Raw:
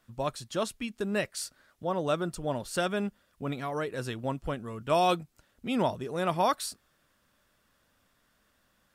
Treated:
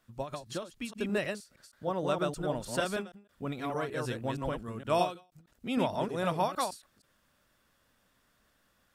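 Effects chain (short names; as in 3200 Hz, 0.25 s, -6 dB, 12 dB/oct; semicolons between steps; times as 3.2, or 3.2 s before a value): reverse delay 0.156 s, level -2.5 dB; ending taper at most 170 dB/s; gain -2.5 dB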